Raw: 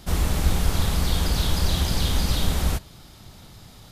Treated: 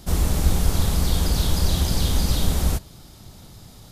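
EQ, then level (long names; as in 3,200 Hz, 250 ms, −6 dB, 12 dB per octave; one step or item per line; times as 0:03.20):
bass and treble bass −1 dB, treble +8 dB
tilt shelving filter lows +4 dB
−1.0 dB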